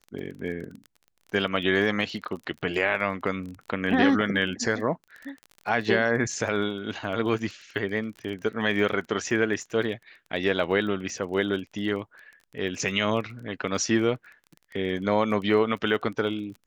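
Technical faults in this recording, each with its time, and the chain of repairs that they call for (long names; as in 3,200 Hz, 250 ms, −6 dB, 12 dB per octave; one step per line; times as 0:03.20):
surface crackle 23 per second −35 dBFS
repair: click removal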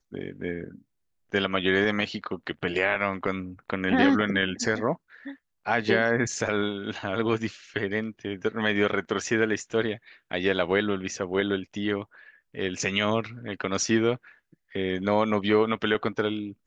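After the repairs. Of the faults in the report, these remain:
none of them is left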